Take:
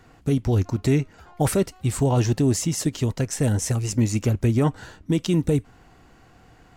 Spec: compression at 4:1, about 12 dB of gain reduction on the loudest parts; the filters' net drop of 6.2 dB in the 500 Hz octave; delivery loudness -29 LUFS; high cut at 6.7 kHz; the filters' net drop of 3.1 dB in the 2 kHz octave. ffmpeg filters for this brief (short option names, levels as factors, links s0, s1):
-af "lowpass=6700,equalizer=f=500:t=o:g=-8.5,equalizer=f=2000:t=o:g=-3.5,acompressor=threshold=0.0251:ratio=4,volume=2.11"